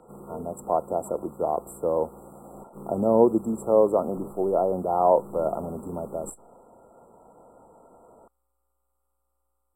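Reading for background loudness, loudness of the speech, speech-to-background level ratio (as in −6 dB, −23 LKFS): −44.5 LKFS, −25.5 LKFS, 19.0 dB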